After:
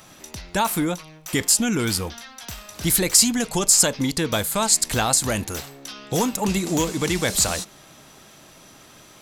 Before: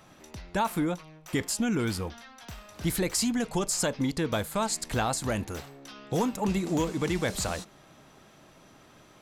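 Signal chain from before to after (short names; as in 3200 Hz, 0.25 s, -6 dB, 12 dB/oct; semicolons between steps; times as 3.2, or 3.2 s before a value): high shelf 3300 Hz +11.5 dB; gain +4.5 dB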